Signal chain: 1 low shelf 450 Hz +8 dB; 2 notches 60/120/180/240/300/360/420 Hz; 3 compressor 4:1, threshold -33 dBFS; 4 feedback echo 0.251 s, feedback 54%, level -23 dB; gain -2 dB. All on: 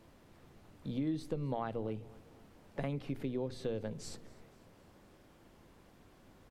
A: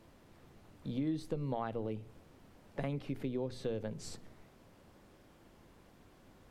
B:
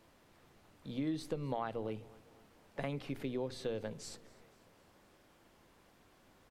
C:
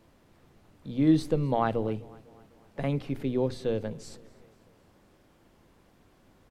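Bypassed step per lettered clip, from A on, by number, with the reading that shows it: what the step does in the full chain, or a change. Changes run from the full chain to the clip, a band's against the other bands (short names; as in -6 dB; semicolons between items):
4, echo-to-direct -21.5 dB to none; 1, 125 Hz band -4.5 dB; 3, mean gain reduction 6.5 dB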